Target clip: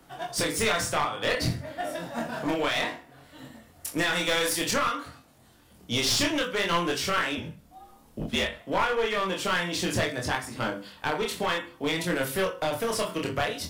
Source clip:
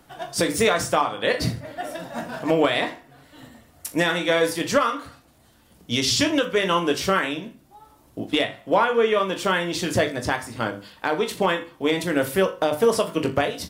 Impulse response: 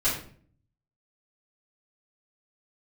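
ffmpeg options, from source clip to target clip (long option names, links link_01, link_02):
-filter_complex "[0:a]asettb=1/sr,asplit=3[link_01][link_02][link_03];[link_01]atrim=end=4.134[link_04];[link_02]atrim=start=4.13:end=4.71,asetpts=PTS-STARTPTS,afade=type=in:duration=0.004:curve=qsin,afade=type=out:start_time=0.576:duration=0.004:curve=qsin,highshelf=frequency=4000:gain=8[link_05];[link_03]atrim=start=4.706[link_06];[link_04][link_05]acrossfade=duration=0.004:curve1=hsin:curve2=qsin[link_07];[link_07][link_06]acrossfade=duration=0.004:curve1=qsin:curve2=hsin,acrossover=split=110|990[link_08][link_09][link_10];[link_09]alimiter=limit=-18.5dB:level=0:latency=1:release=400[link_11];[link_08][link_11][link_10]amix=inputs=3:normalize=0,flanger=delay=22.5:depth=5.4:speed=0.57,aeval=exprs='clip(val(0),-1,0.0447)':channel_layout=same,asettb=1/sr,asplit=3[link_12][link_13][link_14];[link_12]atrim=end=7.374[link_15];[link_13]atrim=start=7.37:end=8.61,asetpts=PTS-STARTPTS,afade=type=in:duration=0.004:curve=qsin,afade=type=out:start_time=1.236:duration=0.004:curve=qsin,afreqshift=-71[link_16];[link_14]atrim=start=8.606[link_17];[link_15][link_16]acrossfade=duration=0.004:curve1=hsin:curve2=qsin[link_18];[link_18][link_17]acrossfade=duration=0.004:curve1=qsin:curve2=hsin,volume=2dB"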